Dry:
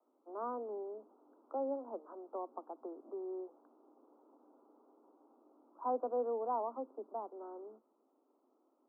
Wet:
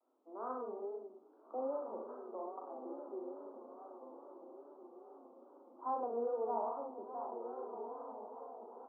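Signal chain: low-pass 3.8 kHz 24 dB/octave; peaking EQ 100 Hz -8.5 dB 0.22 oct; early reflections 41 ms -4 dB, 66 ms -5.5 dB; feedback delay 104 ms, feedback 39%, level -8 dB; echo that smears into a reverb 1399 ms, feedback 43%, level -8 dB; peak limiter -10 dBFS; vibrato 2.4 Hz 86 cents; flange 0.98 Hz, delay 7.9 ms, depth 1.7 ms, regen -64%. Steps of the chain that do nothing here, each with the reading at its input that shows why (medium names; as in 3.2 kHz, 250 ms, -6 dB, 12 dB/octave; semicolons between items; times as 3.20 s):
low-pass 3.8 kHz: input has nothing above 1.3 kHz; peaking EQ 100 Hz: input has nothing below 210 Hz; peak limiter -10 dBFS: peak at its input -21.5 dBFS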